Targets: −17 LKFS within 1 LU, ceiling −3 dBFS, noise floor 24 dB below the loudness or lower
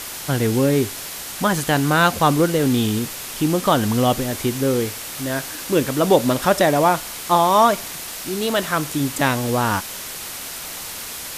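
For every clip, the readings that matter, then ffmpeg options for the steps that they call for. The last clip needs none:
background noise floor −32 dBFS; target noise floor −44 dBFS; integrated loudness −20.0 LKFS; sample peak −1.0 dBFS; target loudness −17.0 LKFS
→ -af "afftdn=noise_reduction=12:noise_floor=-32"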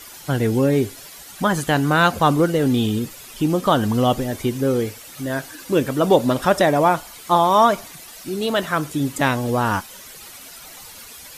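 background noise floor −41 dBFS; target noise floor −44 dBFS
→ -af "afftdn=noise_reduction=6:noise_floor=-41"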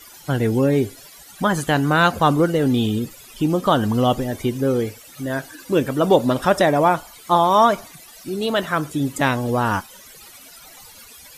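background noise floor −44 dBFS; integrated loudness −19.5 LKFS; sample peak −1.5 dBFS; target loudness −17.0 LKFS
→ -af "volume=2.5dB,alimiter=limit=-3dB:level=0:latency=1"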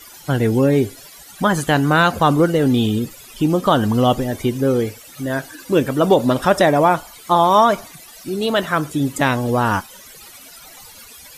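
integrated loudness −17.5 LKFS; sample peak −3.0 dBFS; background noise floor −42 dBFS

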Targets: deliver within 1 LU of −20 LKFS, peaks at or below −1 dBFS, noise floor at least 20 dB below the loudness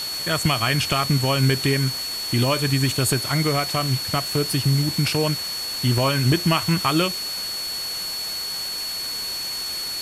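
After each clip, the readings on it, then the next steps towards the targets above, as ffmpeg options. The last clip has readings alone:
interfering tone 4,400 Hz; level of the tone −27 dBFS; background noise floor −29 dBFS; target noise floor −42 dBFS; integrated loudness −21.5 LKFS; sample peak −6.5 dBFS; target loudness −20.0 LKFS
→ -af "bandreject=frequency=4400:width=30"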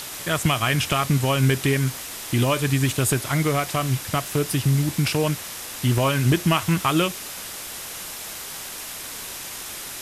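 interfering tone none found; background noise floor −35 dBFS; target noise floor −44 dBFS
→ -af "afftdn=noise_reduction=9:noise_floor=-35"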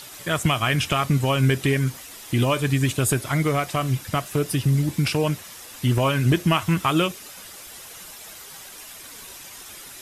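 background noise floor −42 dBFS; target noise floor −43 dBFS
→ -af "afftdn=noise_reduction=6:noise_floor=-42"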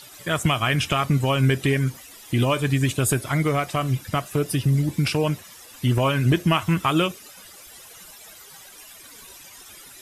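background noise floor −45 dBFS; integrated loudness −22.5 LKFS; sample peak −7.0 dBFS; target loudness −20.0 LKFS
→ -af "volume=2.5dB"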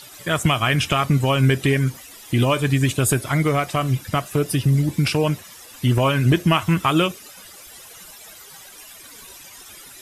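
integrated loudness −20.0 LKFS; sample peak −4.5 dBFS; background noise floor −43 dBFS

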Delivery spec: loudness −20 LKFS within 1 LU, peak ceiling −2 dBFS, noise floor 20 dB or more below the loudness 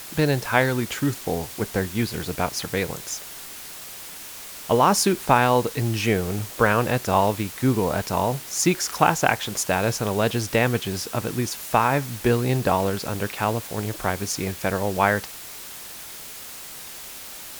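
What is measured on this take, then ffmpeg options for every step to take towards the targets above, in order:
background noise floor −39 dBFS; target noise floor −43 dBFS; integrated loudness −23.0 LKFS; sample peak −1.5 dBFS; target loudness −20.0 LKFS
→ -af "afftdn=noise_reduction=6:noise_floor=-39"
-af "volume=3dB,alimiter=limit=-2dB:level=0:latency=1"

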